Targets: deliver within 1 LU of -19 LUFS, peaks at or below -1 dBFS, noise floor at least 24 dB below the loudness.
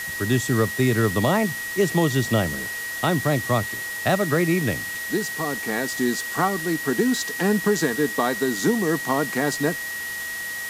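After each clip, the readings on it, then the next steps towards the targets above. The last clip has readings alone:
steady tone 1900 Hz; tone level -29 dBFS; noise floor -31 dBFS; noise floor target -47 dBFS; loudness -23.0 LUFS; peak -8.5 dBFS; loudness target -19.0 LUFS
-> notch 1900 Hz, Q 30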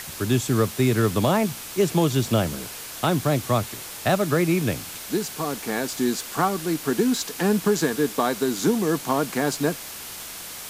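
steady tone none; noise floor -37 dBFS; noise floor target -48 dBFS
-> denoiser 11 dB, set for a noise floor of -37 dBFS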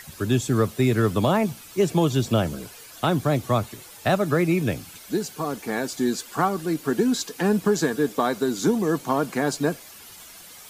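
noise floor -45 dBFS; noise floor target -48 dBFS
-> denoiser 6 dB, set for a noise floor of -45 dBFS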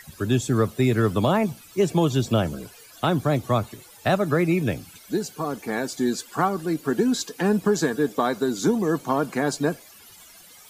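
noise floor -49 dBFS; loudness -24.0 LUFS; peak -10.0 dBFS; loudness target -19.0 LUFS
-> gain +5 dB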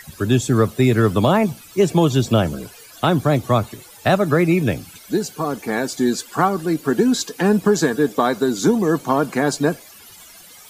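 loudness -19.0 LUFS; peak -5.0 dBFS; noise floor -44 dBFS

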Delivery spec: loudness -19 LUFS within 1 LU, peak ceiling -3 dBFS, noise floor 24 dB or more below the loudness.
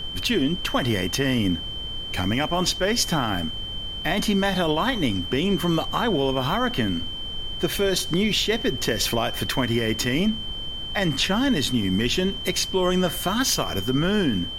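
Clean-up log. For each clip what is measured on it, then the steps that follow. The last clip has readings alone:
steady tone 3100 Hz; tone level -31 dBFS; noise floor -32 dBFS; noise floor target -48 dBFS; loudness -23.5 LUFS; peak -9.0 dBFS; loudness target -19.0 LUFS
-> notch 3100 Hz, Q 30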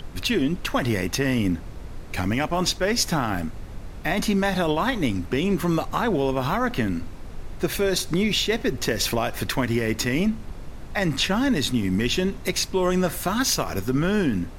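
steady tone none; noise floor -37 dBFS; noise floor target -48 dBFS
-> noise print and reduce 11 dB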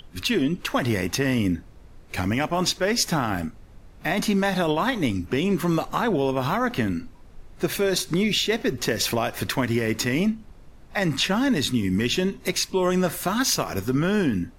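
noise floor -48 dBFS; loudness -24.0 LUFS; peak -10.5 dBFS; loudness target -19.0 LUFS
-> gain +5 dB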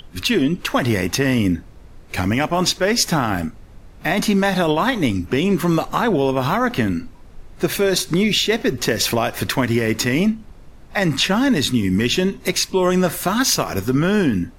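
loudness -19.0 LUFS; peak -5.5 dBFS; noise floor -43 dBFS

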